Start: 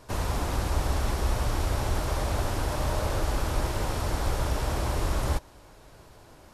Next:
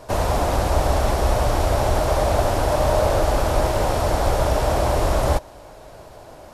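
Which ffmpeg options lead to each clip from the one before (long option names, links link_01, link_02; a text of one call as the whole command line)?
ffmpeg -i in.wav -af "equalizer=frequency=640:width_type=o:width=0.87:gain=10,volume=6dB" out.wav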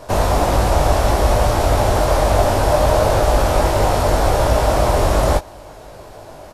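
ffmpeg -i in.wav -filter_complex "[0:a]asplit=2[link_01][link_02];[link_02]adelay=20,volume=-5.5dB[link_03];[link_01][link_03]amix=inputs=2:normalize=0,volume=3.5dB" out.wav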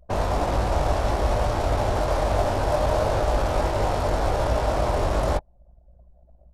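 ffmpeg -i in.wav -af "aeval=exprs='val(0)+0.0112*(sin(2*PI*60*n/s)+sin(2*PI*2*60*n/s)/2+sin(2*PI*3*60*n/s)/3+sin(2*PI*4*60*n/s)/4+sin(2*PI*5*60*n/s)/5)':channel_layout=same,anlmdn=1000,volume=-7.5dB" out.wav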